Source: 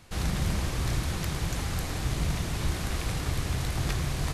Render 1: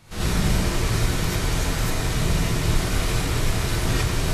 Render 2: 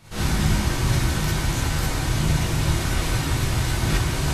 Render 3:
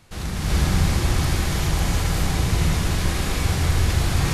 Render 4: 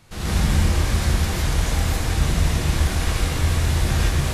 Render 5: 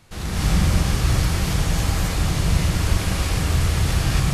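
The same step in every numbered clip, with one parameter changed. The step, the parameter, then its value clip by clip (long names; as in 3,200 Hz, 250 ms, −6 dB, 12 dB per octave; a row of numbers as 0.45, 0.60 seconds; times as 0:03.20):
reverb whose tail is shaped and stops, gate: 120, 80, 450, 190, 300 milliseconds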